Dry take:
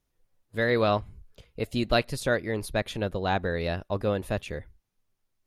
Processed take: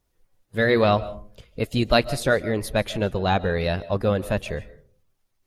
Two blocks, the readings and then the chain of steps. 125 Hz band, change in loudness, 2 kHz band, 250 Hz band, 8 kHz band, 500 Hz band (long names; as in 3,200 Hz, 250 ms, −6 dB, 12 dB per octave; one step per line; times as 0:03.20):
+5.5 dB, +5.0 dB, +4.5 dB, +5.5 dB, +5.0 dB, +5.0 dB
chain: spectral magnitudes quantised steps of 15 dB
comb and all-pass reverb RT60 0.45 s, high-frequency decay 0.35×, pre-delay 105 ms, DRR 17.5 dB
level +5.5 dB